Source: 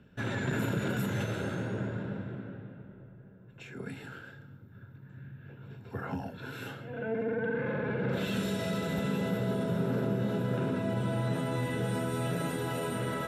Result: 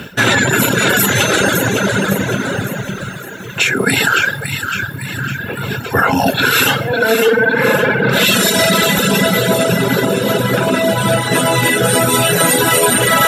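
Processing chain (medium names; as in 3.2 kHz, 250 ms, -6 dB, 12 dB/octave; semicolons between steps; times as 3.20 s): reverse; compression 5:1, threshold -40 dBFS, peak gain reduction 12.5 dB; reverse; tilt EQ +3 dB/octave; two-band feedback delay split 960 Hz, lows 135 ms, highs 558 ms, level -6.5 dB; reverb removal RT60 1.5 s; loudness maximiser +35.5 dB; trim -1 dB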